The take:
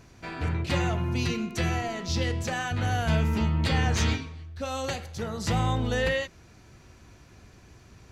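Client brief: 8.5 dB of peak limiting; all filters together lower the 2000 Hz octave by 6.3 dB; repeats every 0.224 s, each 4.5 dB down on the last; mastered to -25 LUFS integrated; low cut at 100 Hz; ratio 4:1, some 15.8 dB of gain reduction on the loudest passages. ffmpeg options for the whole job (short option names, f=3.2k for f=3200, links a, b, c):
-af "highpass=100,equalizer=f=2k:t=o:g=-8,acompressor=threshold=-43dB:ratio=4,alimiter=level_in=14dB:limit=-24dB:level=0:latency=1,volume=-14dB,aecho=1:1:224|448|672|896|1120|1344|1568|1792|2016:0.596|0.357|0.214|0.129|0.0772|0.0463|0.0278|0.0167|0.01,volume=21dB"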